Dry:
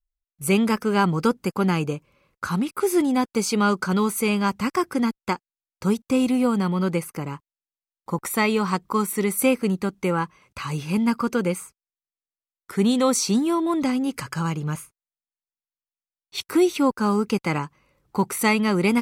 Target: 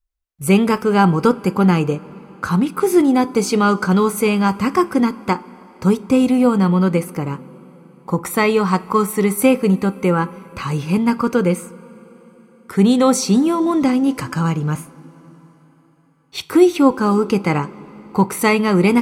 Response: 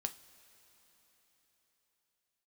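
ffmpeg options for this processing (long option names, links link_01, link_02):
-filter_complex "[0:a]asplit=2[link_01][link_02];[1:a]atrim=start_sample=2205,highshelf=frequency=2400:gain=-11[link_03];[link_02][link_03]afir=irnorm=-1:irlink=0,volume=6.5dB[link_04];[link_01][link_04]amix=inputs=2:normalize=0,volume=-2dB"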